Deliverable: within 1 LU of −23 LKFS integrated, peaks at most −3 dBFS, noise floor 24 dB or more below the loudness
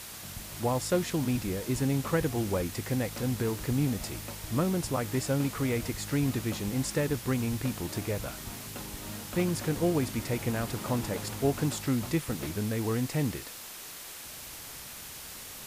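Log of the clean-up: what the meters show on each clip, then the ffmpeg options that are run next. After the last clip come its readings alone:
background noise floor −44 dBFS; target noise floor −56 dBFS; integrated loudness −31.5 LKFS; sample peak −13.5 dBFS; target loudness −23.0 LKFS
→ -af "afftdn=noise_reduction=12:noise_floor=-44"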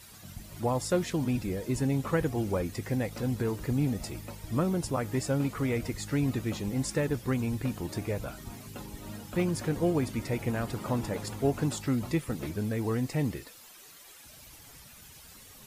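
background noise floor −52 dBFS; target noise floor −55 dBFS
→ -af "afftdn=noise_reduction=6:noise_floor=-52"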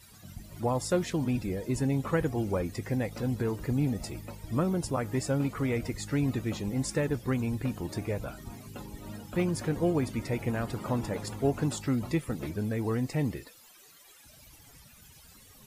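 background noise floor −56 dBFS; integrated loudness −31.0 LKFS; sample peak −14.0 dBFS; target loudness −23.0 LKFS
→ -af "volume=8dB"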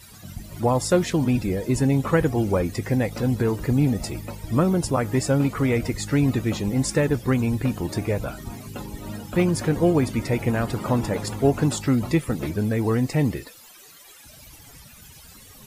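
integrated loudness −23.0 LKFS; sample peak −6.0 dBFS; background noise floor −48 dBFS

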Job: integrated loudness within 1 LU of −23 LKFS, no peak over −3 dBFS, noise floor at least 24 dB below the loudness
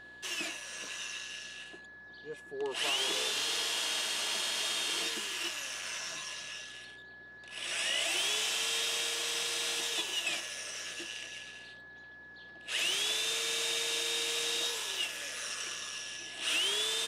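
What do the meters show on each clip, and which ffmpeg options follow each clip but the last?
mains hum 60 Hz; hum harmonics up to 360 Hz; level of the hum −64 dBFS; interfering tone 1,700 Hz; level of the tone −49 dBFS; integrated loudness −32.5 LKFS; sample peak −22.5 dBFS; target loudness −23.0 LKFS
→ -af "bandreject=frequency=60:width_type=h:width=4,bandreject=frequency=120:width_type=h:width=4,bandreject=frequency=180:width_type=h:width=4,bandreject=frequency=240:width_type=h:width=4,bandreject=frequency=300:width_type=h:width=4,bandreject=frequency=360:width_type=h:width=4"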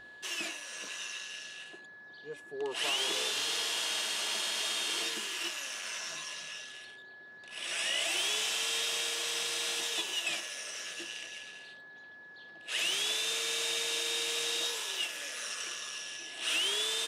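mains hum none found; interfering tone 1,700 Hz; level of the tone −49 dBFS
→ -af "bandreject=frequency=1700:width=30"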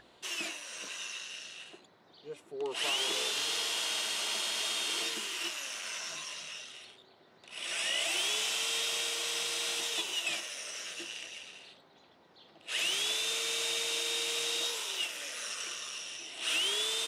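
interfering tone none found; integrated loudness −32.5 LKFS; sample peak −22.5 dBFS; target loudness −23.0 LKFS
→ -af "volume=9.5dB"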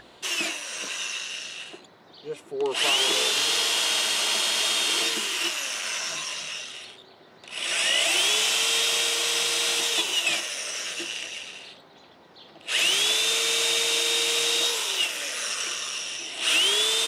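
integrated loudness −23.0 LKFS; sample peak −13.0 dBFS; background noise floor −52 dBFS

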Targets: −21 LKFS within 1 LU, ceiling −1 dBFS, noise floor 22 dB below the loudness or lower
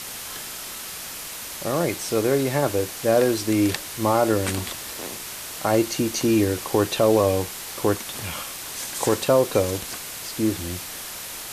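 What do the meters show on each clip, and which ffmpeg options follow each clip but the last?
background noise floor −35 dBFS; target noise floor −46 dBFS; integrated loudness −24.0 LKFS; sample peak −6.5 dBFS; target loudness −21.0 LKFS
→ -af "afftdn=noise_reduction=11:noise_floor=-35"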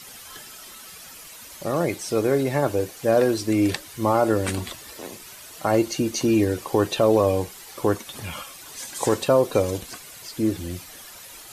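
background noise floor −43 dBFS; target noise floor −45 dBFS
→ -af "afftdn=noise_reduction=6:noise_floor=-43"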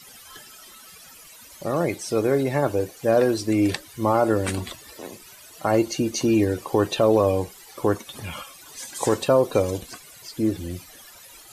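background noise floor −47 dBFS; integrated loudness −23.0 LKFS; sample peak −7.0 dBFS; target loudness −21.0 LKFS
→ -af "volume=2dB"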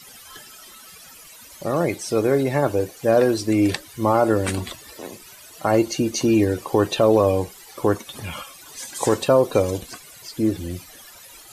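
integrated loudness −21.0 LKFS; sample peak −5.0 dBFS; background noise floor −45 dBFS

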